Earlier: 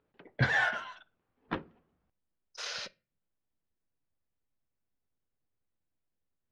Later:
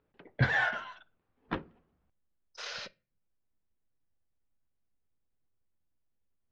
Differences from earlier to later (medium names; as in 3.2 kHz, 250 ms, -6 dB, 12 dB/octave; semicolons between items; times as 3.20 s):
speech: add distance through air 79 m; master: add bass shelf 76 Hz +6.5 dB